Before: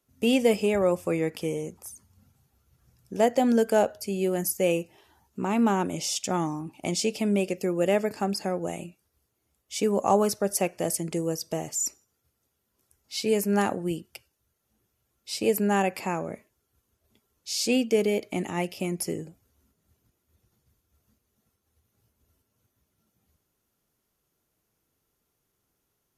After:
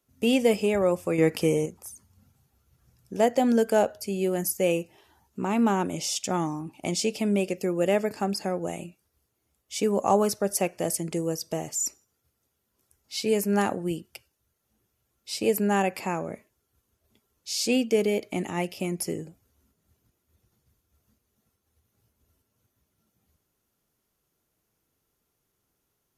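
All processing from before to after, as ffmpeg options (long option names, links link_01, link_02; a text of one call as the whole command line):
ffmpeg -i in.wav -filter_complex "[0:a]asettb=1/sr,asplit=3[link_01][link_02][link_03];[link_01]atrim=end=1.184[link_04];[link_02]atrim=start=1.18:end=1.66,asetpts=PTS-STARTPTS,afade=type=in:duration=0.004:curve=qsin,afade=type=out:start_time=0.476:duration=0.004:curve=qsin,bandreject=frequency=3400:width=11,acontrast=68[link_05];[link_03]atrim=start=1.656[link_06];[link_04][link_05]acrossfade=duration=0.004:curve1=hsin:curve2=qsin[link_07];[link_07][link_06]acrossfade=duration=0.004:curve1=qsin:curve2=hsin" out.wav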